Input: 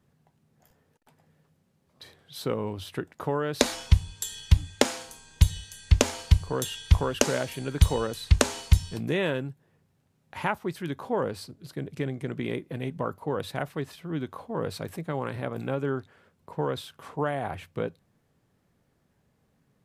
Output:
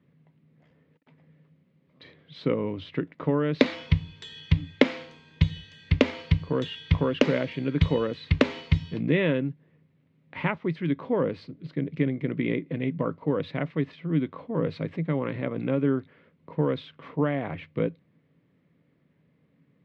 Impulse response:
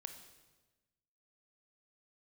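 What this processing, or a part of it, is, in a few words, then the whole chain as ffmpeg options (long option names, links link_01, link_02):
guitar cabinet: -af "highpass=95,equalizer=frequency=160:width_type=q:width=4:gain=9,equalizer=frequency=280:width_type=q:width=4:gain=9,equalizer=frequency=510:width_type=q:width=4:gain=4,equalizer=frequency=790:width_type=q:width=4:gain=-8,equalizer=frequency=1500:width_type=q:width=4:gain=-4,equalizer=frequency=2100:width_type=q:width=4:gain=7,lowpass=frequency=3600:width=0.5412,lowpass=frequency=3600:width=1.3066"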